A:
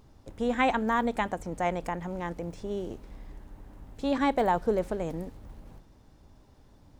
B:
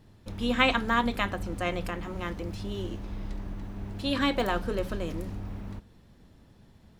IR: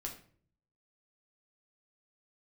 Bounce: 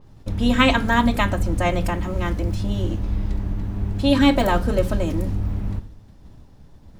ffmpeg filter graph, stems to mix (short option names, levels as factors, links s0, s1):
-filter_complex "[0:a]volume=1.41,asplit=2[s0][s1];[1:a]lowshelf=f=200:g=11.5,volume=-1,volume=1.33,asplit=2[s2][s3];[s3]volume=0.398[s4];[s1]apad=whole_len=308427[s5];[s2][s5]sidechaingate=range=0.0224:threshold=0.00316:ratio=16:detection=peak[s6];[2:a]atrim=start_sample=2205[s7];[s4][s7]afir=irnorm=-1:irlink=0[s8];[s0][s6][s8]amix=inputs=3:normalize=0,adynamicequalizer=threshold=0.0126:dfrequency=4900:dqfactor=0.7:tfrequency=4900:tqfactor=0.7:attack=5:release=100:ratio=0.375:range=2.5:mode=boostabove:tftype=highshelf"